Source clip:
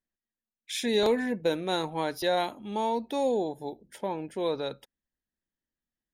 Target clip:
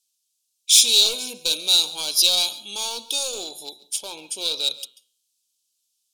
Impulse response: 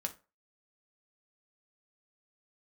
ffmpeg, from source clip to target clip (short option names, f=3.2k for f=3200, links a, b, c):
-filter_complex "[0:a]lowpass=11k,bass=f=250:g=-12,treble=f=4k:g=3,bandreject=f=123.8:t=h:w=4,bandreject=f=247.6:t=h:w=4,bandreject=f=371.4:t=h:w=4,bandreject=f=495.2:t=h:w=4,bandreject=f=619:t=h:w=4,bandreject=f=742.8:t=h:w=4,bandreject=f=866.6:t=h:w=4,bandreject=f=990.4:t=h:w=4,bandreject=f=1.1142k:t=h:w=4,bandreject=f=1.238k:t=h:w=4,bandreject=f=1.3618k:t=h:w=4,bandreject=f=1.4856k:t=h:w=4,bandreject=f=1.6094k:t=h:w=4,bandreject=f=1.7332k:t=h:w=4,bandreject=f=1.857k:t=h:w=4,bandreject=f=1.9808k:t=h:w=4,bandreject=f=2.1046k:t=h:w=4,bandreject=f=2.2284k:t=h:w=4,bandreject=f=2.3522k:t=h:w=4,bandreject=f=2.476k:t=h:w=4,bandreject=f=2.5998k:t=h:w=4,bandreject=f=2.7236k:t=h:w=4,bandreject=f=2.8474k:t=h:w=4,bandreject=f=2.9712k:t=h:w=4,bandreject=f=3.095k:t=h:w=4,bandreject=f=3.2188k:t=h:w=4,bandreject=f=3.3426k:t=h:w=4,bandreject=f=3.4664k:t=h:w=4,bandreject=f=3.5902k:t=h:w=4,bandreject=f=3.714k:t=h:w=4,bandreject=f=3.8378k:t=h:w=4,bandreject=f=3.9616k:t=h:w=4,bandreject=f=4.0854k:t=h:w=4,bandreject=f=4.2092k:t=h:w=4,bandreject=f=4.333k:t=h:w=4,aeval=exprs='clip(val(0),-1,0.0355)':c=same,aexciter=amount=12.8:drive=8.4:freq=2.7k,asuperstop=centerf=1900:order=12:qfactor=3.3,asplit=2[a][b];[1:a]atrim=start_sample=2205,adelay=138[c];[b][c]afir=irnorm=-1:irlink=0,volume=-18.5dB[d];[a][d]amix=inputs=2:normalize=0,volume=-5.5dB"